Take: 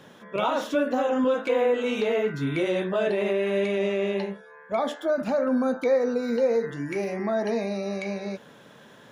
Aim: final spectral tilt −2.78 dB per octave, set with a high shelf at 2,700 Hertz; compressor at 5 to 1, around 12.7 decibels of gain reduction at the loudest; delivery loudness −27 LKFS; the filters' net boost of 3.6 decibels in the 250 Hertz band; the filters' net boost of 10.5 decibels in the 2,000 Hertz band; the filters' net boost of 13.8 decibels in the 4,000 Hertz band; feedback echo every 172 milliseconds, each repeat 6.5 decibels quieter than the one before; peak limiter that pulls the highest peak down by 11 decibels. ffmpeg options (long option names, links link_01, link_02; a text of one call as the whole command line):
ffmpeg -i in.wav -af "equalizer=frequency=250:width_type=o:gain=4,equalizer=frequency=2000:width_type=o:gain=7,highshelf=frequency=2700:gain=8,equalizer=frequency=4000:width_type=o:gain=8.5,acompressor=threshold=-31dB:ratio=5,alimiter=level_in=4dB:limit=-24dB:level=0:latency=1,volume=-4dB,aecho=1:1:172|344|516|688|860|1032:0.473|0.222|0.105|0.0491|0.0231|0.0109,volume=8.5dB" out.wav